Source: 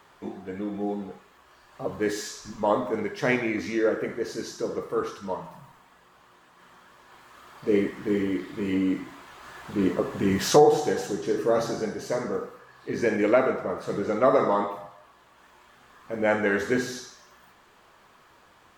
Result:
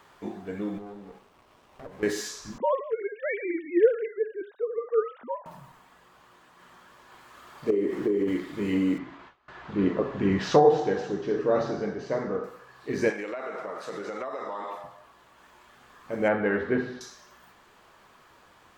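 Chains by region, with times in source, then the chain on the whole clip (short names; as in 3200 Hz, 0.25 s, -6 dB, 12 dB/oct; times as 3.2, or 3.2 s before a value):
0.78–2.03 HPF 270 Hz 6 dB/oct + compressor 2.5:1, threshold -42 dBFS + running maximum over 17 samples
2.58–5.46 sine-wave speech + mismatched tape noise reduction decoder only
7.7–8.28 bell 380 Hz +15 dB 1 oct + compressor 12:1, threshold -21 dBFS
8.98–12.44 de-hum 111.5 Hz, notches 15 + gate with hold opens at -35 dBFS, closes at -39 dBFS + air absorption 190 m
13.1–14.84 weighting filter A + compressor 16:1, threshold -30 dBFS
16.28–17.01 companded quantiser 6-bit + air absorption 450 m
whole clip: dry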